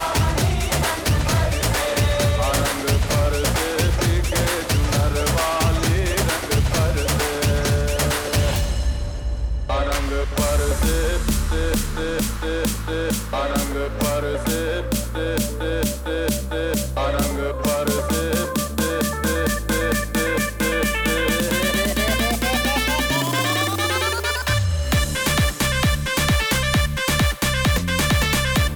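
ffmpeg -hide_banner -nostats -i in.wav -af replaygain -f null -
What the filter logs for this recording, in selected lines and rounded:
track_gain = +3.7 dB
track_peak = 0.169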